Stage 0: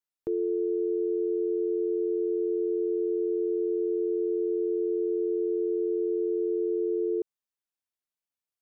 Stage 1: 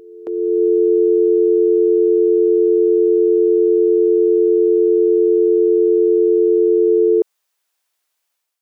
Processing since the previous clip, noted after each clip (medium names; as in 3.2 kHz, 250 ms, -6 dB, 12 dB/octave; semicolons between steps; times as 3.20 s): high-pass 490 Hz 12 dB/octave; level rider gain up to 11 dB; reverse echo 349 ms -21 dB; trim +9 dB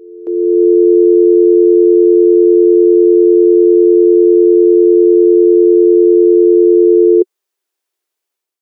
peaking EQ 370 Hz +15 dB 0.64 oct; trim -5.5 dB